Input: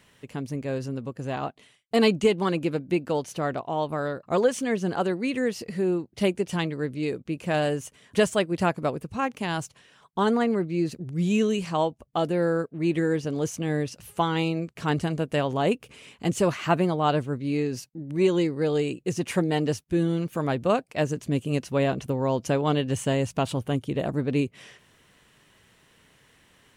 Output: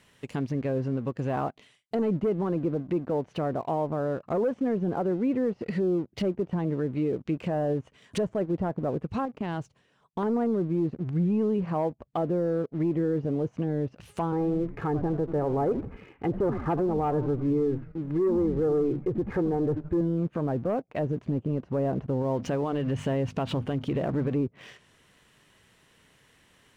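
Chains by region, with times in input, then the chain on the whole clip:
9.25–10.23 s: gate -46 dBFS, range -8 dB + tilt shelf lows +5.5 dB, about 1.2 kHz + compression 2:1, threshold -38 dBFS
14.32–20.01 s: low-pass 1.9 kHz 24 dB/octave + comb 2.4 ms, depth 57% + frequency-shifting echo 81 ms, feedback 49%, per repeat -150 Hz, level -14.5 dB
22.22–24.34 s: companding laws mixed up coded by mu + hum notches 50/100/150/200/250 Hz + compression 4:1, threshold -27 dBFS
whole clip: low-pass that closes with the level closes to 840 Hz, closed at -24 dBFS; waveshaping leveller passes 1; peak limiter -19.5 dBFS

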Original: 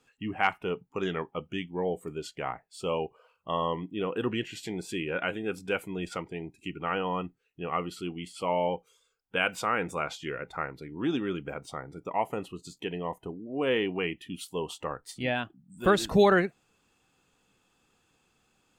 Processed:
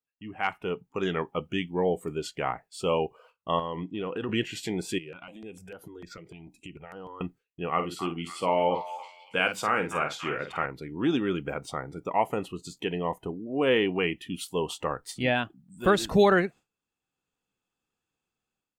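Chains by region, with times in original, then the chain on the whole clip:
3.59–4.29 s: low-pass 7 kHz 24 dB/octave + compression 4:1, threshold -33 dBFS
4.98–7.21 s: compression 4:1, threshold -44 dBFS + stepped phaser 6.7 Hz 250–7900 Hz
7.71–10.66 s: high-pass 88 Hz + doubling 48 ms -8.5 dB + repeats whose band climbs or falls 280 ms, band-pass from 1.1 kHz, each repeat 0.7 oct, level -8 dB
whole clip: gate with hold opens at -51 dBFS; level rider gain up to 12.5 dB; trim -8 dB

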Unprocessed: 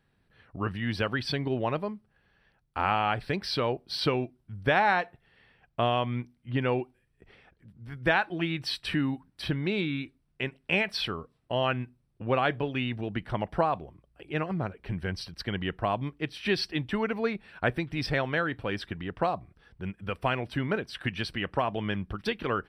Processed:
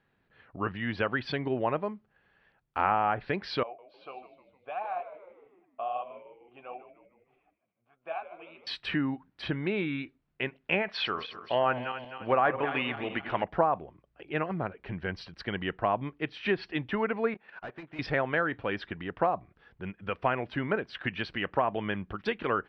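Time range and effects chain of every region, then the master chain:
3.63–8.67 s: vowel filter a + flange 1.6 Hz, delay 2.7 ms, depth 10 ms, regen +47% + frequency-shifting echo 153 ms, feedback 53%, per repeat -90 Hz, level -12.5 dB
10.88–13.44 s: backward echo that repeats 130 ms, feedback 64%, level -11.5 dB + overdrive pedal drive 8 dB, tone 5.3 kHz, clips at -12 dBFS
17.34–17.99 s: overdrive pedal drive 33 dB, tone 1.2 kHz, clips at -12.5 dBFS + compression 10:1, threshold -30 dBFS + gate -32 dBFS, range -25 dB
whole clip: low-pass 2.9 kHz 12 dB/octave; low-pass that closes with the level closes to 1.5 kHz, closed at -22 dBFS; bass shelf 180 Hz -10.5 dB; trim +2 dB

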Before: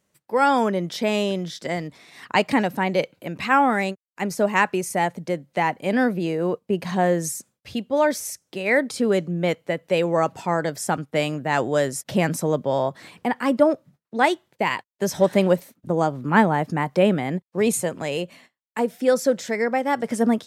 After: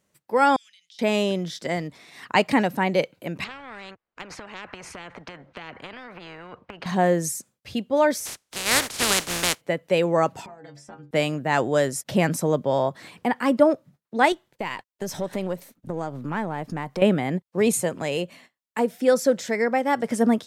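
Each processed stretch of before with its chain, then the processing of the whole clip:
0.56–0.99 s: inverse Chebyshev high-pass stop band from 910 Hz, stop band 60 dB + distance through air 80 m + compression 5:1, threshold -50 dBFS
3.44–6.86 s: low-pass 1.5 kHz + compression, threshold -28 dBFS + spectrum-flattening compressor 4:1
8.25–9.60 s: spectral contrast reduction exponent 0.18 + low-pass 10 kHz
10.46–11.11 s: compression 4:1, threshold -29 dBFS + distance through air 98 m + inharmonic resonator 70 Hz, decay 0.36 s, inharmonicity 0.008
14.32–17.02 s: partial rectifier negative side -3 dB + compression 2.5:1, threshold -27 dBFS
whole clip: none

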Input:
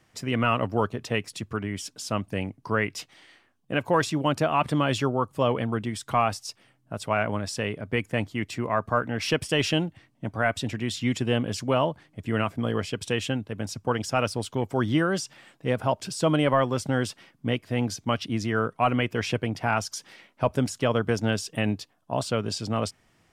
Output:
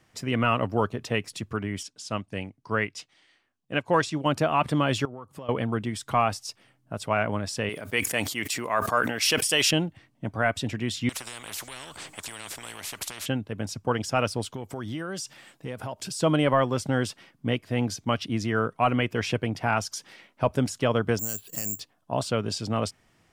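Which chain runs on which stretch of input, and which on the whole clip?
1.83–4.26 s: Bessel low-pass 7.8 kHz, order 4 + treble shelf 2.6 kHz +6 dB + upward expansion, over -40 dBFS
5.05–5.49 s: high-pass 58 Hz + compression 12:1, threshold -35 dBFS
7.69–9.71 s: RIAA curve recording + decay stretcher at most 61 dB/s
11.09–13.26 s: peaking EQ 7.9 kHz +14 dB 0.4 oct + compression 4:1, threshold -28 dBFS + spectrum-flattening compressor 10:1
14.54–16.19 s: treble shelf 5 kHz +7.5 dB + compression 4:1, threshold -31 dBFS
21.19–21.80 s: distance through air 99 m + compression 3:1, threshold -39 dBFS + careless resampling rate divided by 6×, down filtered, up zero stuff
whole clip: none

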